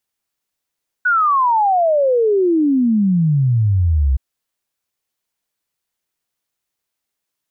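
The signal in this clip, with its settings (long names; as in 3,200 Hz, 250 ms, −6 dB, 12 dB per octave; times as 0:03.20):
exponential sine sweep 1,500 Hz → 63 Hz 3.12 s −11.5 dBFS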